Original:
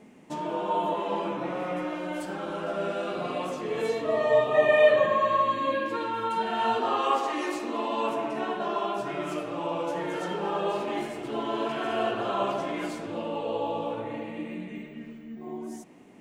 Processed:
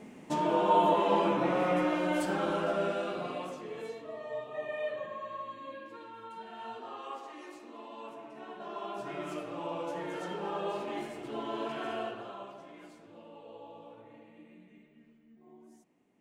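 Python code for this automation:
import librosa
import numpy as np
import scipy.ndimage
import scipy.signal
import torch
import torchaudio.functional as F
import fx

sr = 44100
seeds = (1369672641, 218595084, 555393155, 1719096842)

y = fx.gain(x, sr, db=fx.line((2.46, 3.0), (3.5, -8.0), (4.18, -17.0), (8.32, -17.0), (9.13, -6.5), (11.89, -6.5), (12.5, -19.0)))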